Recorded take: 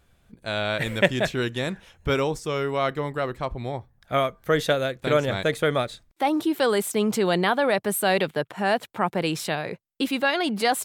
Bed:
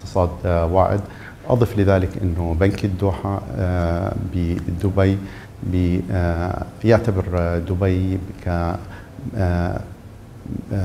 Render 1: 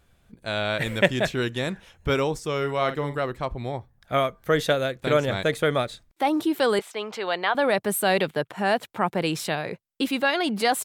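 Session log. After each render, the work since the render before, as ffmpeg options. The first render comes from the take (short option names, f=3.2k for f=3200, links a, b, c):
-filter_complex "[0:a]asplit=3[a][b][c];[a]afade=t=out:st=2.61:d=0.02[d];[b]asplit=2[e][f];[f]adelay=49,volume=-10.5dB[g];[e][g]amix=inputs=2:normalize=0,afade=t=in:st=2.61:d=0.02,afade=t=out:st=3.18:d=0.02[h];[c]afade=t=in:st=3.18:d=0.02[i];[d][h][i]amix=inputs=3:normalize=0,asettb=1/sr,asplit=3[j][k][l];[j]atrim=end=6.794[m];[k]atrim=start=6.79:end=7.55,asetpts=PTS-STARTPTS,afade=t=in:d=0.004:c=qsin,afade=t=out:st=0.756:d=0.004:c=qsin,acrossover=split=500 4800:gain=0.1 1 0.112[n][o][p];[n][o][p]amix=inputs=3:normalize=0[q];[l]atrim=start=7.546[r];[m][q]acrossfade=d=0.004:c1=hsin:c2=qsin[s];[s][r]acrossfade=d=0.004:c1=qsin:c2=hsin"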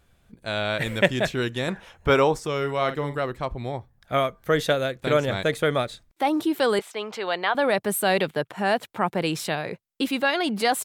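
-filter_complex "[0:a]asettb=1/sr,asplit=3[a][b][c];[a]atrim=end=1.684[d];[b]atrim=start=1.68:end=2.47,asetpts=PTS-STARTPTS,afade=t=in:d=0.004:c=qsin,afade=t=out:st=0.786:d=0.004:c=qsin,equalizer=f=900:t=o:w=2.4:g=8[e];[c]atrim=start=2.466[f];[d][e]acrossfade=d=0.004:c1=hsin:c2=qsin[g];[g][f]acrossfade=d=0.004:c1=qsin:c2=hsin"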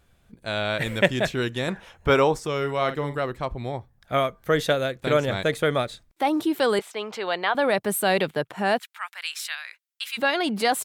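-filter_complex "[0:a]asplit=3[a][b][c];[a]afade=t=out:st=8.78:d=0.02[d];[b]highpass=f=1.4k:w=0.5412,highpass=f=1.4k:w=1.3066,afade=t=in:st=8.78:d=0.02,afade=t=out:st=10.17:d=0.02[e];[c]afade=t=in:st=10.17:d=0.02[f];[d][e][f]amix=inputs=3:normalize=0"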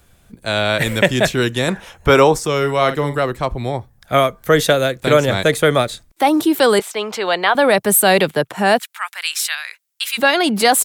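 -filter_complex "[0:a]acrossover=split=340|540|5900[a][b][c][d];[d]acontrast=69[e];[a][b][c][e]amix=inputs=4:normalize=0,alimiter=level_in=8.5dB:limit=-1dB:release=50:level=0:latency=1"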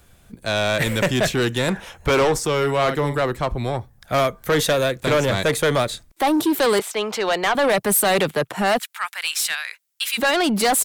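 -af "asoftclip=type=tanh:threshold=-14dB"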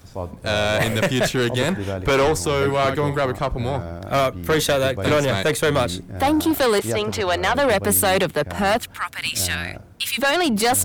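-filter_complex "[1:a]volume=-11.5dB[a];[0:a][a]amix=inputs=2:normalize=0"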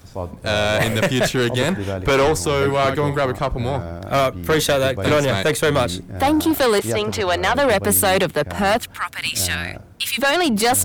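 -af "volume=1.5dB"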